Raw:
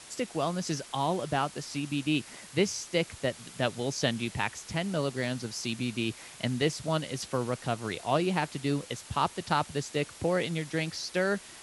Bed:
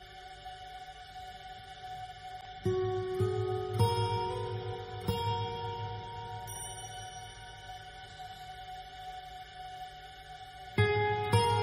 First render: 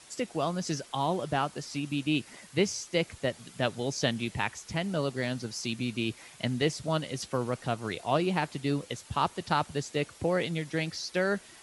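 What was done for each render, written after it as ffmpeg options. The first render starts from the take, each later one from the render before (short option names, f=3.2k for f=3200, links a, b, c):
-af "afftdn=nr=6:nf=-49"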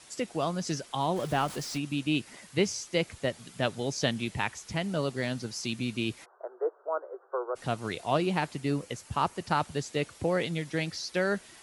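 -filter_complex "[0:a]asettb=1/sr,asplit=3[a][b][c];[a]atrim=end=1.164[d];[b]atrim=start=1.16:end=1.78,asetpts=PTS-STARTPTS,afade=t=in:d=0.004:c=qsin,afade=t=out:st=0.616:d=0.004:c=qsin,aeval=exprs='val(0)+0.5*0.0119*sgn(val(0))':c=same[e];[c]atrim=start=1.776[f];[d][e]acrossfade=d=0.004:c1=hsin:c2=qsin[g];[g][f]acrossfade=d=0.004:c1=qsin:c2=hsin,asplit=3[h][i][j];[h]afade=t=out:st=6.24:d=0.02[k];[i]asuperpass=centerf=740:order=20:qfactor=0.65,afade=t=in:st=6.24:d=0.02,afade=t=out:st=7.55:d=0.02[l];[j]afade=t=in:st=7.55:d=0.02[m];[k][l][m]amix=inputs=3:normalize=0,asettb=1/sr,asplit=3[n][o][p];[n]atrim=end=8.534[q];[o]atrim=start=8.53:end=9.6,asetpts=PTS-STARTPTS,afade=t=in:d=0.004:c=qsin,afade=t=out:st=1.066:d=0.004:c=qsin,equalizer=f=3.6k:w=3.1:g=-6.5[r];[p]atrim=start=9.596[s];[q][r]acrossfade=d=0.004:c1=hsin:c2=qsin[t];[t][s]acrossfade=d=0.004:c1=qsin:c2=hsin"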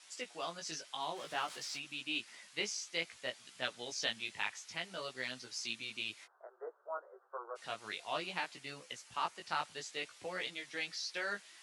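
-af "flanger=delay=15.5:depth=3.7:speed=0.57,bandpass=f=3.4k:t=q:w=0.54:csg=0"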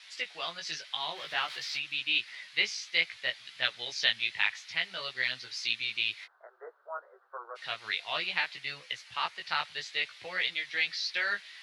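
-af "equalizer=f=125:t=o:w=1:g=4,equalizer=f=250:t=o:w=1:g=-8,equalizer=f=2k:t=o:w=1:g=10,equalizer=f=4k:t=o:w=1:g=11,equalizer=f=8k:t=o:w=1:g=-9"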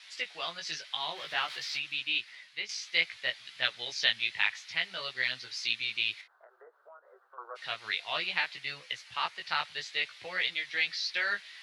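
-filter_complex "[0:a]asettb=1/sr,asplit=3[a][b][c];[a]atrim=end=6.214[d];[b]atrim=start=6.21:end=7.38,asetpts=PTS-STARTPTS,afade=t=in:d=0.004:c=qsin,afade=t=out:st=1.166:d=0.004:c=qsin,acompressor=threshold=-52dB:ratio=4:attack=3.2:release=140:knee=1:detection=peak[e];[c]atrim=start=7.376[f];[d][e]acrossfade=d=0.004:c1=hsin:c2=qsin[g];[g][f]acrossfade=d=0.004:c1=qsin:c2=hsin,asplit=2[h][i];[h]atrim=end=2.69,asetpts=PTS-STARTPTS,afade=t=out:st=1.87:d=0.82:silence=0.281838[j];[i]atrim=start=2.69,asetpts=PTS-STARTPTS,afade=t=in:d=0.004:c=hsin:silence=0.281838[k];[j][k]concat=n=2:v=0:a=1"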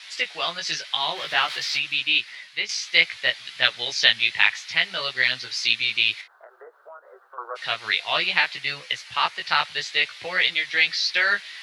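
-af "volume=10dB,alimiter=limit=-1dB:level=0:latency=1"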